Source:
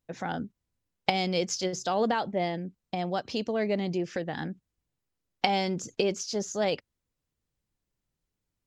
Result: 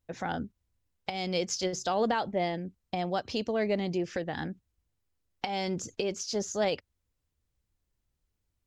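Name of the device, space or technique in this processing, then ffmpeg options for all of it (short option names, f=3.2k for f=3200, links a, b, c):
car stereo with a boomy subwoofer: -af "lowshelf=f=110:t=q:w=1.5:g=6,alimiter=limit=-18dB:level=0:latency=1:release=296"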